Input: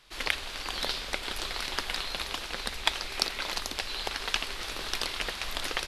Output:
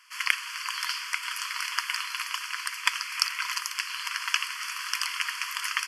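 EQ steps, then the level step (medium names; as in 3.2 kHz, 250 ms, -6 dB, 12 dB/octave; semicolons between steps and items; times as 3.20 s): brick-wall FIR high-pass 940 Hz; Butterworth band-stop 3.8 kHz, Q 2.8; +5.0 dB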